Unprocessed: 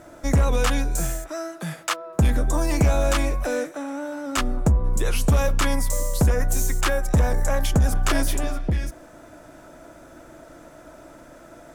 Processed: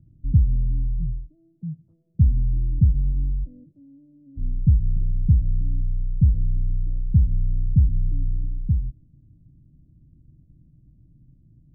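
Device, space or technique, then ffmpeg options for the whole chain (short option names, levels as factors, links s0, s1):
the neighbour's flat through the wall: -af "lowpass=f=170:w=0.5412,lowpass=f=170:w=1.3066,equalizer=f=120:t=o:w=0.99:g=6"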